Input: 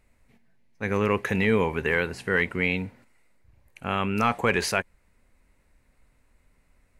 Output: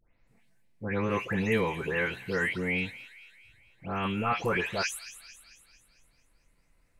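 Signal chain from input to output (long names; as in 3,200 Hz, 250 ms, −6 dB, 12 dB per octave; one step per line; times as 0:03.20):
every frequency bin delayed by itself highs late, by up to 275 ms
delay with a high-pass on its return 223 ms, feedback 54%, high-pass 2,800 Hz, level −10.5 dB
level −3.5 dB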